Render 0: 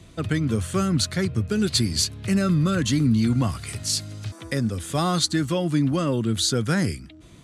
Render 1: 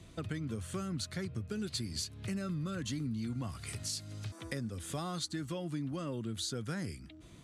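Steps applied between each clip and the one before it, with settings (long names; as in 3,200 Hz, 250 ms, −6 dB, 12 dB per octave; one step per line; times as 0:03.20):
downward compressor 3 to 1, threshold −31 dBFS, peak gain reduction 11.5 dB
level −6.5 dB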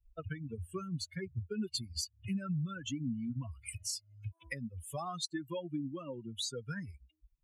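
spectral dynamics exaggerated over time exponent 3
level +6 dB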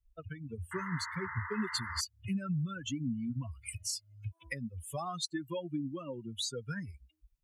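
automatic gain control gain up to 5.5 dB
sound drawn into the spectrogram noise, 0:00.71–0:02.01, 880–2,100 Hz −38 dBFS
level −4 dB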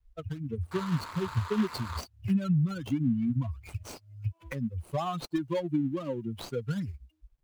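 running median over 25 samples
level +8 dB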